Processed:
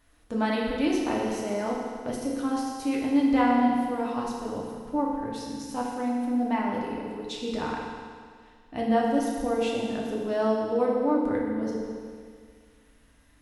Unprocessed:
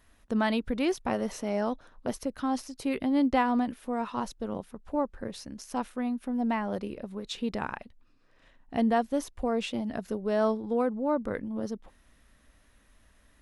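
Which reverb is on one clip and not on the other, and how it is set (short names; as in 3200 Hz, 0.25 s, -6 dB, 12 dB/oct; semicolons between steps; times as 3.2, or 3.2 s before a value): FDN reverb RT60 1.9 s, low-frequency decay 1×, high-frequency decay 1×, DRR -3.5 dB; gain -3 dB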